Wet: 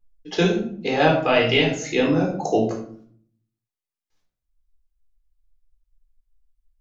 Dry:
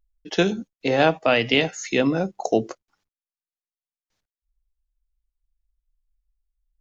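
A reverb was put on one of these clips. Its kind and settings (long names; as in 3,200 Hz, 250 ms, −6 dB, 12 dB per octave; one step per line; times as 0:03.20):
rectangular room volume 710 cubic metres, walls furnished, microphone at 3.9 metres
level −4 dB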